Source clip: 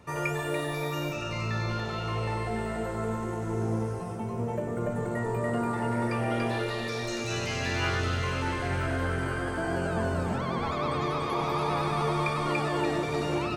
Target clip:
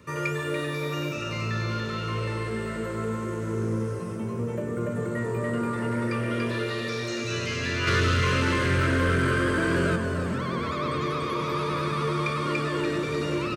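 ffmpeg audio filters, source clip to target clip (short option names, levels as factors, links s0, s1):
-filter_complex "[0:a]acrossover=split=6800[s0][s1];[s1]acompressor=threshold=0.00178:ratio=4:attack=1:release=60[s2];[s0][s2]amix=inputs=2:normalize=0,highpass=72,asettb=1/sr,asplit=3[s3][s4][s5];[s3]atrim=end=7.874[s6];[s4]atrim=start=7.87:end=9.96,asetpts=PTS-STARTPTS,afade=t=in:d=0.004:c=qsin,afade=t=out:st=2.086:d=0.004:c=qsin,acontrast=85[s7];[s5]atrim=start=9.956[s8];[s6][s7]acrossfade=d=0.004:c1=hsin:c2=qsin[s9];[s9][s8]acrossfade=d=0.004:c1=qsin:c2=hsin,asoftclip=type=tanh:threshold=0.1,asuperstop=centerf=770:order=4:qfactor=1.9,asplit=5[s10][s11][s12][s13][s14];[s11]adelay=387,afreqshift=110,volume=0.126[s15];[s12]adelay=774,afreqshift=220,volume=0.0631[s16];[s13]adelay=1161,afreqshift=330,volume=0.0316[s17];[s14]adelay=1548,afreqshift=440,volume=0.0157[s18];[s10][s15][s16][s17][s18]amix=inputs=5:normalize=0,volume=1.41"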